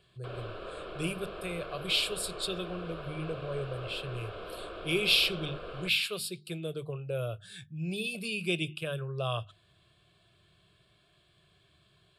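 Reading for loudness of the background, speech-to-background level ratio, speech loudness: -43.0 LUFS, 10.5 dB, -32.5 LUFS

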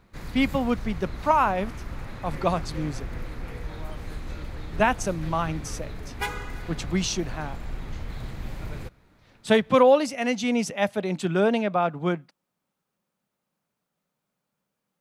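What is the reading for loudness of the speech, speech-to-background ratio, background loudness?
-25.0 LUFS, 12.5 dB, -37.5 LUFS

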